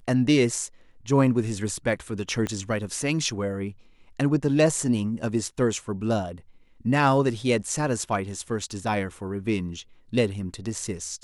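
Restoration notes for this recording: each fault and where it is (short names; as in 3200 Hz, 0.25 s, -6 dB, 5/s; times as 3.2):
2.47 pop -16 dBFS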